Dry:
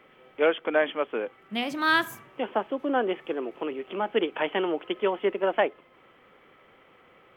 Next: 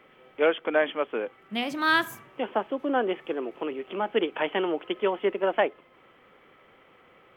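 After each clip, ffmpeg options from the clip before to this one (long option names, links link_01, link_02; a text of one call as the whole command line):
ffmpeg -i in.wav -af anull out.wav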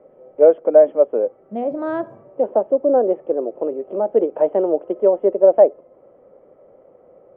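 ffmpeg -i in.wav -af "lowpass=frequency=580:width_type=q:width=4.9,volume=2.5dB" out.wav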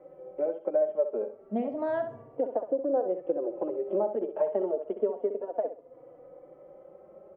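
ffmpeg -i in.wav -filter_complex "[0:a]acompressor=threshold=-23dB:ratio=6,asplit=2[link_01][link_02];[link_02]aecho=0:1:65|130|195:0.335|0.0837|0.0209[link_03];[link_01][link_03]amix=inputs=2:normalize=0,asplit=2[link_04][link_05];[link_05]adelay=3.5,afreqshift=0.31[link_06];[link_04][link_06]amix=inputs=2:normalize=1" out.wav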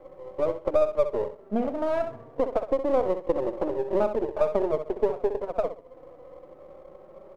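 ffmpeg -i in.wav -af "aeval=exprs='if(lt(val(0),0),0.447*val(0),val(0))':channel_layout=same,volume=6dB" out.wav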